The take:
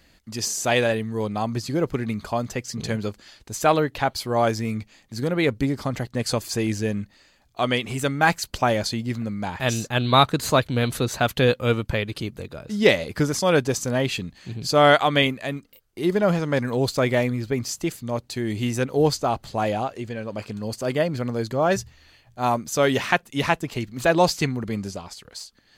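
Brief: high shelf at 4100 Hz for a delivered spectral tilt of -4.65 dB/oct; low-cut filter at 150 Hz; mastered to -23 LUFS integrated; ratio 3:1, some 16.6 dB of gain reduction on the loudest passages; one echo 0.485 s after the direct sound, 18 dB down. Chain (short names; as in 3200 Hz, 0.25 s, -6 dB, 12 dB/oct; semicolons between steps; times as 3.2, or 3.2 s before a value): HPF 150 Hz; high shelf 4100 Hz -6 dB; compressor 3:1, threshold -34 dBFS; echo 0.485 s -18 dB; gain +12.5 dB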